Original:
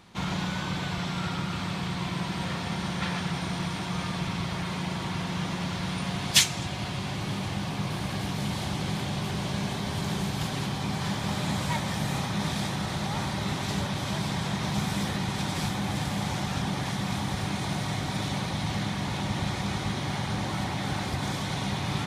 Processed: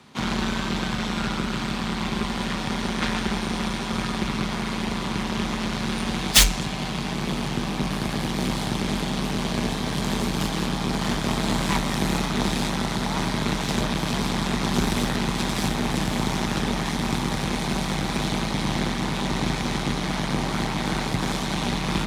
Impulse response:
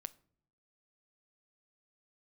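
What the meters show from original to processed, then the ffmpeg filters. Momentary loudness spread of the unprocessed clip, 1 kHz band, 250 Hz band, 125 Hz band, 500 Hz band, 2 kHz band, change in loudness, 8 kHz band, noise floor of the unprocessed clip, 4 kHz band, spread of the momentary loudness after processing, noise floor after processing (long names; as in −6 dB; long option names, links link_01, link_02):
2 LU, +4.5 dB, +6.0 dB, +1.5 dB, +7.0 dB, +5.0 dB, +4.5 dB, +5.0 dB, −33 dBFS, +4.5 dB, 3 LU, −29 dBFS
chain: -filter_complex "[0:a]asplit=2[link_01][link_02];[1:a]atrim=start_sample=2205[link_03];[link_02][link_03]afir=irnorm=-1:irlink=0,volume=1.5dB[link_04];[link_01][link_04]amix=inputs=2:normalize=0,aeval=exprs='1*(cos(1*acos(clip(val(0)/1,-1,1)))-cos(1*PI/2))+0.224*(cos(8*acos(clip(val(0)/1,-1,1)))-cos(8*PI/2))':channel_layout=same,afreqshift=41,volume=-1.5dB"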